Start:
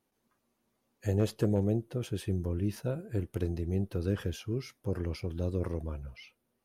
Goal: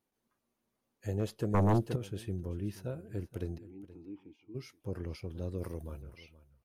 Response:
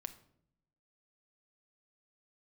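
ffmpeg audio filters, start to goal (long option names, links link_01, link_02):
-filter_complex "[0:a]asplit=3[link_01][link_02][link_03];[link_01]afade=type=out:start_time=3.57:duration=0.02[link_04];[link_02]asplit=3[link_05][link_06][link_07];[link_05]bandpass=frequency=300:width_type=q:width=8,volume=0dB[link_08];[link_06]bandpass=frequency=870:width_type=q:width=8,volume=-6dB[link_09];[link_07]bandpass=frequency=2240:width_type=q:width=8,volume=-9dB[link_10];[link_08][link_09][link_10]amix=inputs=3:normalize=0,afade=type=in:start_time=3.57:duration=0.02,afade=type=out:start_time=4.54:duration=0.02[link_11];[link_03]afade=type=in:start_time=4.54:duration=0.02[link_12];[link_04][link_11][link_12]amix=inputs=3:normalize=0,asettb=1/sr,asplit=3[link_13][link_14][link_15];[link_13]atrim=end=5.584[link_16];[link_14]atrim=start=5.58:end=6.02,asetpts=PTS-STARTPTS,afade=type=in:duration=0.004:curve=qsin,afade=type=out:start_time=0.436:duration=0.004:curve=qsin,aemphasis=mode=production:type=50fm[link_17];[link_15]atrim=start=6.016[link_18];[link_16][link_17]acrossfade=duration=0.004:curve1=hsin:curve2=qsin[link_19];[link_19][link_18]acrossfade=duration=0.004:curve1=qsin:curve2=hsin,aecho=1:1:475:0.133,asettb=1/sr,asplit=3[link_20][link_21][link_22];[link_20]atrim=end=1.544[link_23];[link_21]atrim=start=1.54:end=1.96,asetpts=PTS-STARTPTS,afade=type=in:duration=0.004:curve=qsin,afade=type=out:start_time=0.416:duration=0.004:curve=qsin,aeval=exprs='0.158*sin(PI/2*2.82*val(0)/0.158)':channel_layout=same[link_24];[link_22]atrim=start=1.956[link_25];[link_23][link_24]acrossfade=duration=0.004:curve1=hsin:curve2=qsin[link_26];[link_26][link_25]acrossfade=duration=0.004:curve1=qsin:curve2=hsin,volume=-5.5dB"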